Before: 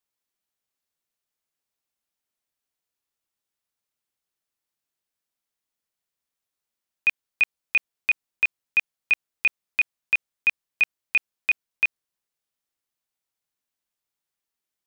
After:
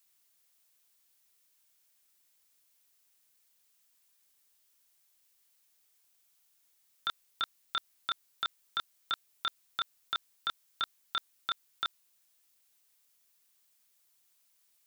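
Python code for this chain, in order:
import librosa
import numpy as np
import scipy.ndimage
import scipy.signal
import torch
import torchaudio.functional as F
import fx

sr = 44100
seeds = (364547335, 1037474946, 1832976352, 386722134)

y = fx.highpass(x, sr, hz=1400.0, slope=6)
y = y + 0.79 * np.pad(y, (int(3.4 * sr / 1000.0), 0))[:len(y)]
y = fx.over_compress(y, sr, threshold_db=-28.0, ratio=-1.0)
y = y * np.sin(2.0 * np.pi * 1100.0 * np.arange(len(y)) / sr)
y = fx.dmg_noise_colour(y, sr, seeds[0], colour='blue', level_db=-71.0)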